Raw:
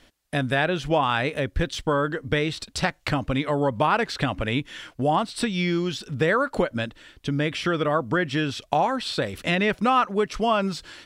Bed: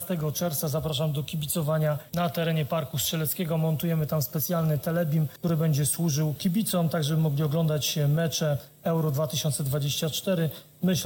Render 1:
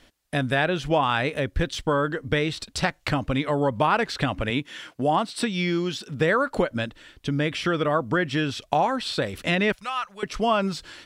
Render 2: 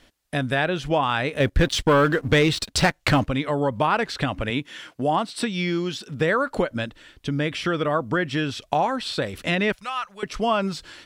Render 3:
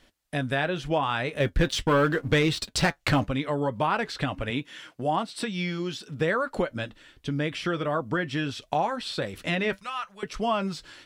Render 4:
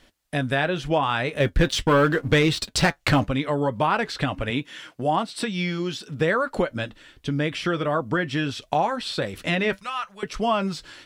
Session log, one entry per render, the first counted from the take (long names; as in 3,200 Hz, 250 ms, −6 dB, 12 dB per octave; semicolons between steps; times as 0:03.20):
0:04.50–0:06.20: high-pass filter 140 Hz; 0:09.72–0:10.23: guitar amp tone stack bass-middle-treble 10-0-10
0:01.40–0:03.27: leveller curve on the samples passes 2
flanger 0.77 Hz, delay 5.1 ms, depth 2.6 ms, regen −64%
level +3.5 dB